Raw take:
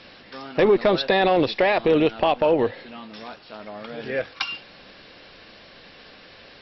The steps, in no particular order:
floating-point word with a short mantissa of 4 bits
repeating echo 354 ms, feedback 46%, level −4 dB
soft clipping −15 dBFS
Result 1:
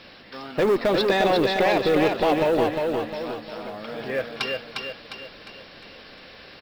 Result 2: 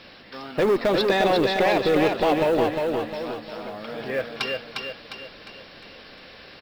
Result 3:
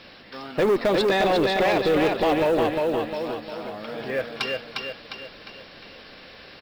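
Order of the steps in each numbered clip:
soft clipping, then repeating echo, then floating-point word with a short mantissa
soft clipping, then floating-point word with a short mantissa, then repeating echo
repeating echo, then soft clipping, then floating-point word with a short mantissa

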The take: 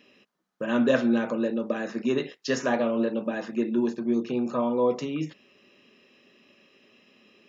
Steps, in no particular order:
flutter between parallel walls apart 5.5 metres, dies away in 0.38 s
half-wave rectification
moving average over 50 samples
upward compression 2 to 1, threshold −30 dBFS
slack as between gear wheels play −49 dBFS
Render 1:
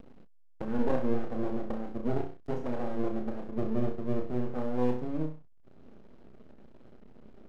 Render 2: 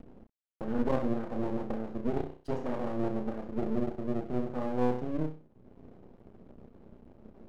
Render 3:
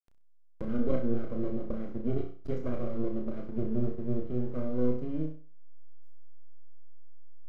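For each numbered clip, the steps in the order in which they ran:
moving average, then half-wave rectification, then flutter between parallel walls, then upward compression, then slack as between gear wheels
slack as between gear wheels, then moving average, then upward compression, then flutter between parallel walls, then half-wave rectification
half-wave rectification, then moving average, then slack as between gear wheels, then upward compression, then flutter between parallel walls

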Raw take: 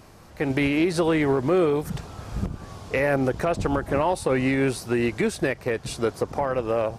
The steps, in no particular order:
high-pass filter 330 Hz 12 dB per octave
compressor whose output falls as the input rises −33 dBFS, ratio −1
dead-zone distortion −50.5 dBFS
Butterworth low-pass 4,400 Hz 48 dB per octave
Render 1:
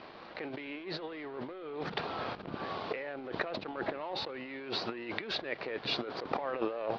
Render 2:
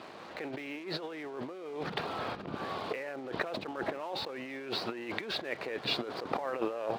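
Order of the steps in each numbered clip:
compressor whose output falls as the input rises, then high-pass filter, then dead-zone distortion, then Butterworth low-pass
Butterworth low-pass, then compressor whose output falls as the input rises, then dead-zone distortion, then high-pass filter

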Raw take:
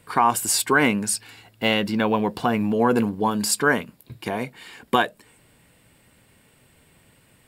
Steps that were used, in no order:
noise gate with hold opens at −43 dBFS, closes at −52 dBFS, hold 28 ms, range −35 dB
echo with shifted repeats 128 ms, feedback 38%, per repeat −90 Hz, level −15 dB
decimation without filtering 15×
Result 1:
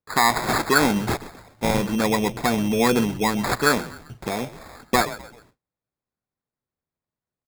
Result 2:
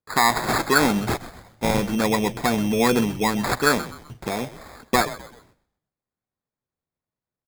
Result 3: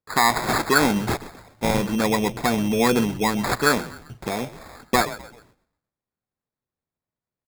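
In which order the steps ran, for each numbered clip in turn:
echo with shifted repeats, then noise gate with hold, then decimation without filtering
noise gate with hold, then decimation without filtering, then echo with shifted repeats
noise gate with hold, then echo with shifted repeats, then decimation without filtering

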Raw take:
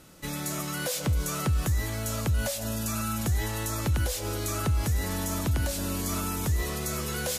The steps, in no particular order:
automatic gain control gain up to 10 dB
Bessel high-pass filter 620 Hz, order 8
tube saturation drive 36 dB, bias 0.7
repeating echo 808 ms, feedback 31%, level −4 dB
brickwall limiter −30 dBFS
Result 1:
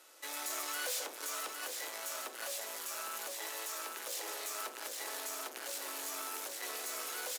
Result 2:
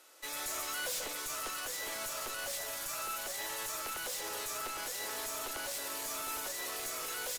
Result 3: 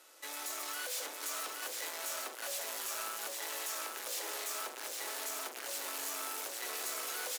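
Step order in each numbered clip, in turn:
tube saturation, then automatic gain control, then repeating echo, then brickwall limiter, then Bessel high-pass filter
Bessel high-pass filter, then tube saturation, then repeating echo, then automatic gain control, then brickwall limiter
automatic gain control, then tube saturation, then Bessel high-pass filter, then brickwall limiter, then repeating echo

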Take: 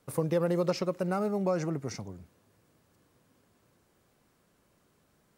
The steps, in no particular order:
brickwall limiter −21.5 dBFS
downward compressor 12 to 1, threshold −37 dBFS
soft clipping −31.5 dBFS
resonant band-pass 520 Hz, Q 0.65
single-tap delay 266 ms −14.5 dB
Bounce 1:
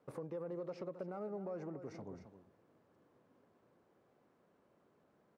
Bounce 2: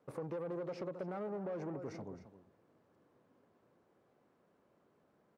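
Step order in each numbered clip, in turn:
brickwall limiter, then single-tap delay, then downward compressor, then soft clipping, then resonant band-pass
brickwall limiter, then single-tap delay, then soft clipping, then resonant band-pass, then downward compressor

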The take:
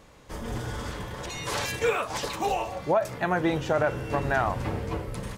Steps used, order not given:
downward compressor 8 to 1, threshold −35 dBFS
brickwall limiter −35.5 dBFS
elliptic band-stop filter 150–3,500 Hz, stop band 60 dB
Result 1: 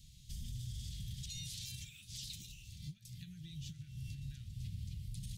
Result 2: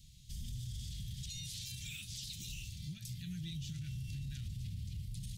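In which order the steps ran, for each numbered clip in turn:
downward compressor, then elliptic band-stop filter, then brickwall limiter
elliptic band-stop filter, then brickwall limiter, then downward compressor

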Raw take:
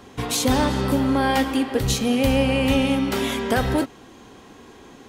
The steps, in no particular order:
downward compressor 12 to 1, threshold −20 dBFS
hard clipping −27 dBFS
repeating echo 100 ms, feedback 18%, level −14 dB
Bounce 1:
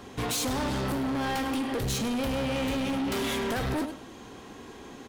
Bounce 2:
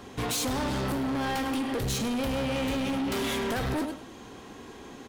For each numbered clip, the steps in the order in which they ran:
downward compressor, then repeating echo, then hard clipping
repeating echo, then downward compressor, then hard clipping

